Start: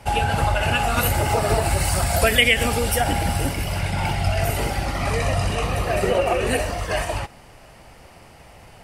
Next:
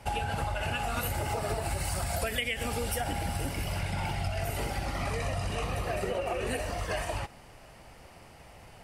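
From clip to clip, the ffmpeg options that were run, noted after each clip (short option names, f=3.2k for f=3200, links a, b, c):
-af "acompressor=threshold=-23dB:ratio=5,volume=-5.5dB"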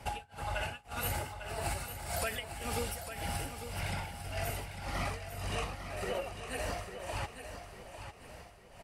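-filter_complex "[0:a]acrossover=split=720|2700[a][b][c];[a]alimiter=level_in=5dB:limit=-24dB:level=0:latency=1:release=229,volume=-5dB[d];[d][b][c]amix=inputs=3:normalize=0,tremolo=f=1.8:d=0.98,aecho=1:1:850|1700|2550|3400:0.355|0.138|0.054|0.021"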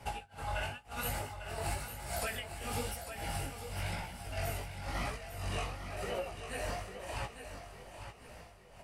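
-af "flanger=delay=16.5:depth=6.4:speed=0.97,volume=1.5dB"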